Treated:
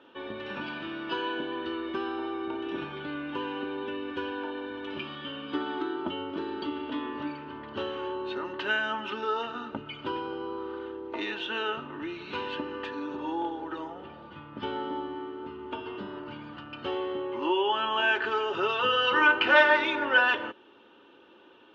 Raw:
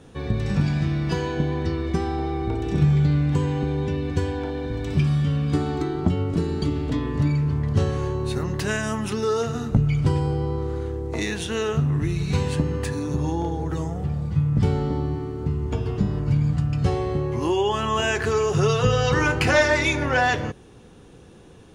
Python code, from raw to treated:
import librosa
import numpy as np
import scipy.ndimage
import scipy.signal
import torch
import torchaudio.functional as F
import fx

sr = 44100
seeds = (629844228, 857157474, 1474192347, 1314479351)

y = fx.cabinet(x, sr, low_hz=410.0, low_slope=12, high_hz=3400.0, hz=(440.0, 640.0, 920.0, 1400.0, 2100.0, 3000.0), db=(4, -5, 4, 6, -5, 9))
y = y + 0.66 * np.pad(y, (int(3.3 * sr / 1000.0), 0))[:len(y)]
y = y * librosa.db_to_amplitude(-4.5)